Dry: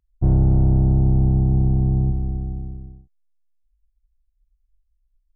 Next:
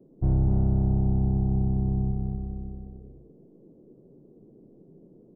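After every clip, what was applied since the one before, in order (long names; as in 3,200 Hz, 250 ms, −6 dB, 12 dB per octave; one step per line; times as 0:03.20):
noise in a band 130–440 Hz −48 dBFS
single-tap delay 255 ms −5.5 dB
level −6.5 dB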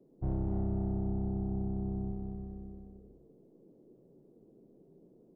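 low-shelf EQ 360 Hz −8 dB
on a send at −8.5 dB: convolution reverb RT60 0.60 s, pre-delay 27 ms
on the sum: level −3 dB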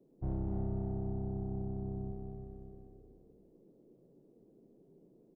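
slap from a distant wall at 59 metres, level −11 dB
level −3 dB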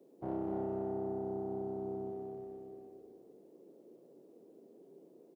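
high-pass filter 360 Hz 12 dB per octave
double-tracking delay 43 ms −11 dB
level +8 dB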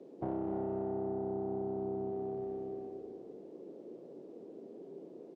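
downward compressor 3 to 1, threshold −45 dBFS, peak gain reduction 9 dB
high-frequency loss of the air 110 metres
level +9.5 dB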